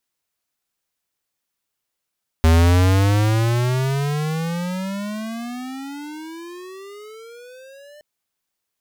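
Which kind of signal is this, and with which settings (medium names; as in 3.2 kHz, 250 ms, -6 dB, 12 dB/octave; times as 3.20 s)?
gliding synth tone square, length 5.57 s, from 79.7 Hz, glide +35 st, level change -32 dB, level -12 dB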